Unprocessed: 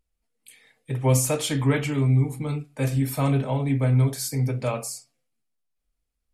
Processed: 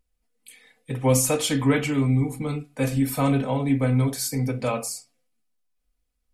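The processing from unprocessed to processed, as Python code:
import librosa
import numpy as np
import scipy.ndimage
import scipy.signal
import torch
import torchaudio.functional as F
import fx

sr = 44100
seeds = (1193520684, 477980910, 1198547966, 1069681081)

y = x + 0.4 * np.pad(x, (int(4.0 * sr / 1000.0), 0))[:len(x)]
y = F.gain(torch.from_numpy(y), 1.5).numpy()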